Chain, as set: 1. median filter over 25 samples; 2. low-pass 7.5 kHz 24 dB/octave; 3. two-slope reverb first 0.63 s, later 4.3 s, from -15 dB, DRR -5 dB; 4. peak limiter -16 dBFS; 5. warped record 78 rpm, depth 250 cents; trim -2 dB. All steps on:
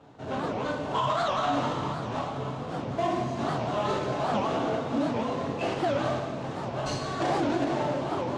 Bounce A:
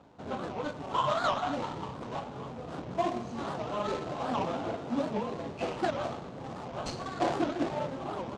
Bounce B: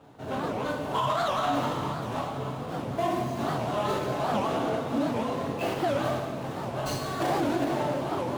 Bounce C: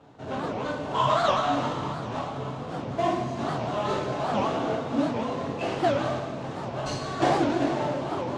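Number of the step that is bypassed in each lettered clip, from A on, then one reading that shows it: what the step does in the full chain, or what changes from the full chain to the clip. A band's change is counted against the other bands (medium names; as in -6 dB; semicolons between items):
3, momentary loudness spread change +3 LU; 2, 8 kHz band +2.0 dB; 4, crest factor change +7.0 dB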